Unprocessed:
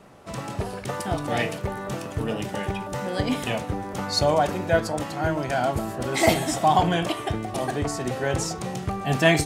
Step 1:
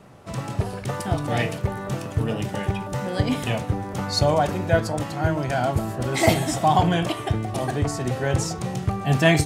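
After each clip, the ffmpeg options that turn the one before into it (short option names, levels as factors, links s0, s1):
-af "equalizer=f=110:t=o:w=1.2:g=7.5"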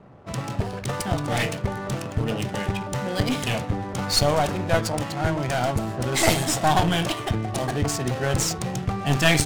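-af "crystalizer=i=3:c=0,aeval=exprs='clip(val(0),-1,0.075)':c=same,adynamicsmooth=sensitivity=7.5:basefreq=1100"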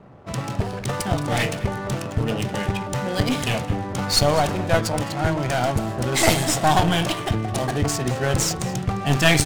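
-af "aecho=1:1:211:0.133,volume=1.26"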